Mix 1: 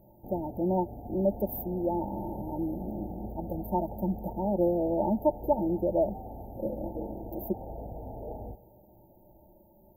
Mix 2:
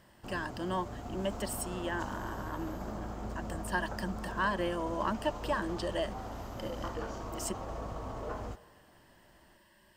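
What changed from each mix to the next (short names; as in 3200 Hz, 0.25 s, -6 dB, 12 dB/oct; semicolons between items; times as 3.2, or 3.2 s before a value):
speech -8.5 dB; master: remove brick-wall FIR band-stop 920–12000 Hz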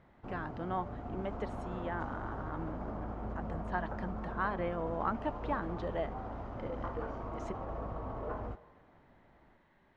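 speech: remove ripple EQ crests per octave 1.3, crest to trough 12 dB; master: add LPF 1800 Hz 12 dB/oct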